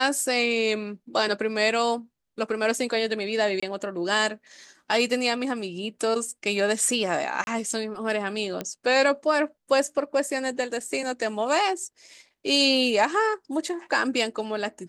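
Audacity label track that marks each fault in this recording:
3.600000	3.620000	gap 25 ms
7.440000	7.470000	gap 31 ms
8.610000	8.610000	pop -15 dBFS

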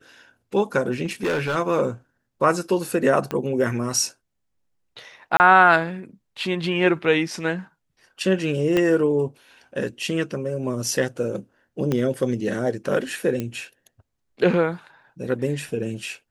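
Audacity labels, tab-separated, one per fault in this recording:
1.040000	1.570000	clipped -19.5 dBFS
3.310000	3.310000	pop -13 dBFS
5.370000	5.400000	gap 29 ms
8.770000	8.770000	pop -9 dBFS
11.920000	11.920000	pop -11 dBFS
13.400000	13.400000	pop -14 dBFS

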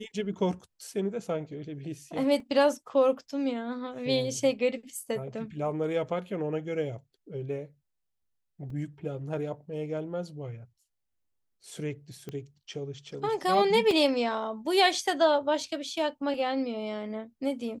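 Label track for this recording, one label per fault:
2.400000	2.400000	gap 2.3 ms
8.700000	8.700000	gap 3.4 ms
12.290000	12.290000	pop -25 dBFS
13.910000	13.910000	gap 2 ms

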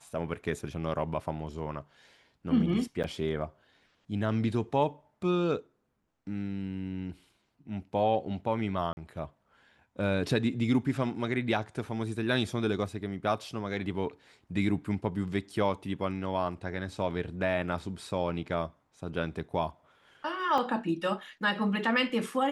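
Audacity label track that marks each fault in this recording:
3.030000	3.040000	gap 8.6 ms
8.930000	8.970000	gap 41 ms
20.580000	20.580000	gap 2.3 ms

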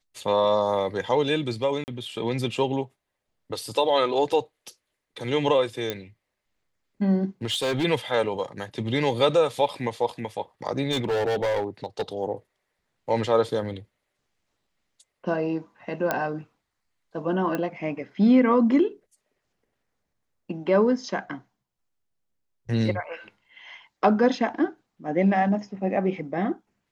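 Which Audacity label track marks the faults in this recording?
1.840000	1.880000	gap 39 ms
5.900000	5.900000	pop -13 dBFS
7.450000	7.850000	clipped -21.5 dBFS
10.910000	12.020000	clipped -21.5 dBFS
16.110000	16.110000	pop -10 dBFS
17.550000	17.550000	pop -15 dBFS

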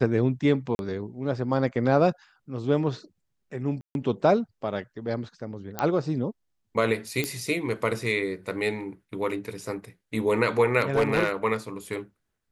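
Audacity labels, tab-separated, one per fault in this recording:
0.750000	0.790000	gap 41 ms
3.810000	3.950000	gap 0.141 s
5.790000	5.790000	pop -12 dBFS
7.240000	7.240000	pop -12 dBFS
10.800000	11.300000	clipped -16.5 dBFS

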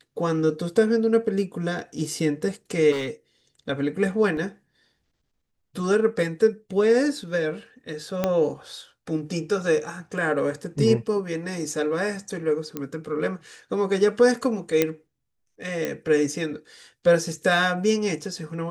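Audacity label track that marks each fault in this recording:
2.910000	3.100000	clipped -24 dBFS
4.370000	4.370000	gap 2 ms
8.240000	8.240000	pop -9 dBFS
12.770000	12.770000	pop -15 dBFS
14.820000	14.820000	pop -6 dBFS
15.850000	15.850000	pop -13 dBFS

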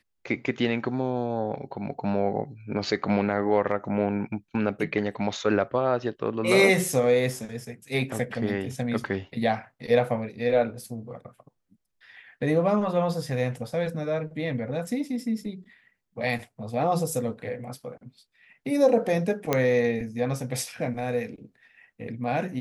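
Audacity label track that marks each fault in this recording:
19.530000	19.530000	pop -8 dBFS

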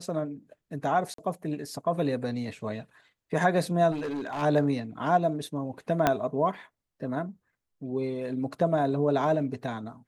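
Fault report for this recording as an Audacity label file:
1.140000	1.180000	gap 43 ms
3.910000	4.430000	clipped -28.5 dBFS
6.070000	6.070000	pop -8 dBFS

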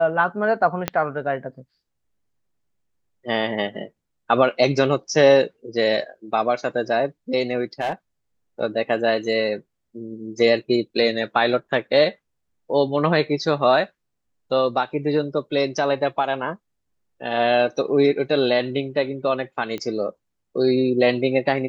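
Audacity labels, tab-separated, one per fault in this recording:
0.880000	0.880000	pop -6 dBFS
7.810000	7.930000	clipped -19 dBFS
19.780000	19.780000	pop -18 dBFS

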